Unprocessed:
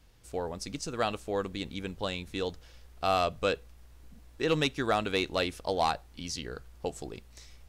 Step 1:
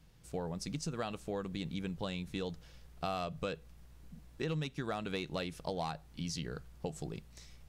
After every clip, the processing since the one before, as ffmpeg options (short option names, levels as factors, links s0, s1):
-af "equalizer=f=160:t=o:w=0.6:g=13,acompressor=threshold=0.0316:ratio=6,volume=0.668"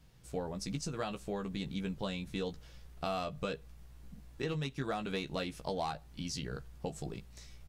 -filter_complex "[0:a]asplit=2[s0][s1];[s1]adelay=15,volume=0.501[s2];[s0][s2]amix=inputs=2:normalize=0"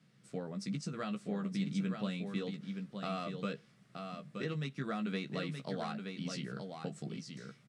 -af "highpass=f=140:w=0.5412,highpass=f=140:w=1.3066,equalizer=f=140:t=q:w=4:g=5,equalizer=f=210:t=q:w=4:g=10,equalizer=f=880:t=q:w=4:g=-8,equalizer=f=1300:t=q:w=4:g=5,equalizer=f=2000:t=q:w=4:g=5,equalizer=f=6600:t=q:w=4:g=-4,lowpass=f=9400:w=0.5412,lowpass=f=9400:w=1.3066,aecho=1:1:923:0.501,volume=0.631"